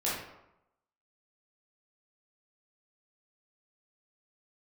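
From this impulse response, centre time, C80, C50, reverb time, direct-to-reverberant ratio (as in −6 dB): 61 ms, 5.0 dB, 0.5 dB, 0.85 s, −8.0 dB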